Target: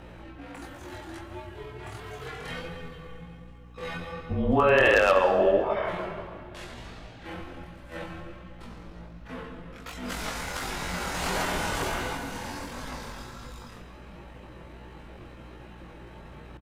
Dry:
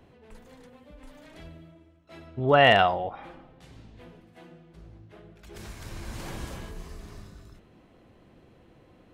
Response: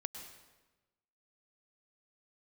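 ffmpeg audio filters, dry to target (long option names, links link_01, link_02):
-filter_complex "[0:a]atempo=0.55,acompressor=threshold=-29dB:ratio=16,highpass=140,equalizer=frequency=1200:width=0.47:gain=9,flanger=delay=19:depth=6.1:speed=1.4,highshelf=frequency=2700:gain=5,aeval=exprs='0.119*(abs(mod(val(0)/0.119+3,4)-2)-1)':channel_layout=same,afreqshift=-160,asplit=2[link_01][link_02];[link_02]adelay=641.4,volume=-23dB,highshelf=frequency=4000:gain=-14.4[link_03];[link_01][link_03]amix=inputs=2:normalize=0,asplit=2[link_04][link_05];[1:a]atrim=start_sample=2205,asetrate=34839,aresample=44100[link_06];[link_05][link_06]afir=irnorm=-1:irlink=0,volume=0dB[link_07];[link_04][link_07]amix=inputs=2:normalize=0,aeval=exprs='val(0)+0.00282*(sin(2*PI*60*n/s)+sin(2*PI*2*60*n/s)/2+sin(2*PI*3*60*n/s)/3+sin(2*PI*4*60*n/s)/4+sin(2*PI*5*60*n/s)/5)':channel_layout=same,volume=3.5dB"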